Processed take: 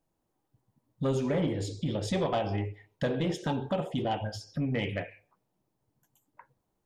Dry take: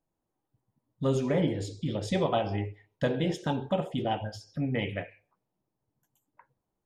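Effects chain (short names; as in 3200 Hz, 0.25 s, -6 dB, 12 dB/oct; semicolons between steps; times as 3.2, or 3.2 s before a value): in parallel at +1.5 dB: compressor, threshold -35 dBFS, peak gain reduction 12.5 dB; on the sum: soft clip -18 dBFS, distortion -18 dB; gain -2.5 dB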